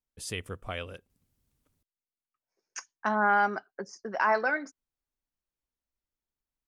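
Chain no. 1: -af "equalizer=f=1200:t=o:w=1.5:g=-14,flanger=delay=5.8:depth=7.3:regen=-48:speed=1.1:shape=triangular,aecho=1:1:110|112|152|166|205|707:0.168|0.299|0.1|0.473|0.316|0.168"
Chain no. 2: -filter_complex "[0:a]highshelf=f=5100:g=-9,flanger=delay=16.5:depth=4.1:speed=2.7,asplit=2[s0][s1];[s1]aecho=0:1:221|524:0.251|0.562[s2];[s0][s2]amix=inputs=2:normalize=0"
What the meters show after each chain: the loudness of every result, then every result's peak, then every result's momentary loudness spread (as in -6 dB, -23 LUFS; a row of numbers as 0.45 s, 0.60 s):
-40.0 LUFS, -32.5 LUFS; -22.0 dBFS, -15.5 dBFS; 18 LU, 22 LU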